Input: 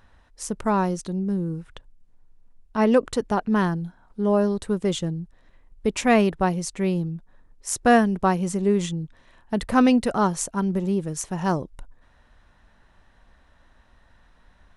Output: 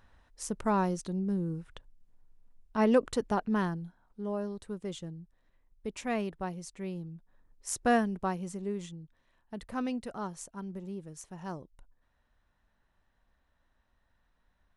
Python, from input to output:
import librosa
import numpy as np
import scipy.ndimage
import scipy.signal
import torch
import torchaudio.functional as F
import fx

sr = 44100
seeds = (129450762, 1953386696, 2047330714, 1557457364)

y = fx.gain(x, sr, db=fx.line((3.3, -6.0), (4.36, -14.5), (7.03, -14.5), (7.69, -7.5), (8.98, -16.5)))